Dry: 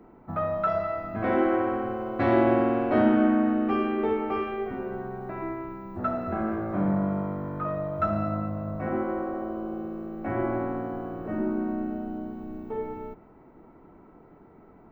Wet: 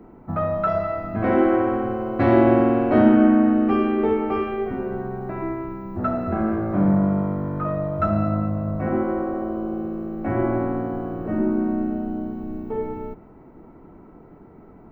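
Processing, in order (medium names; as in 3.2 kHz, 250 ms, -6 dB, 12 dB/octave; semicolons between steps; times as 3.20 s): bass shelf 410 Hz +6 dB; band-stop 3.5 kHz, Q 20; trim +2.5 dB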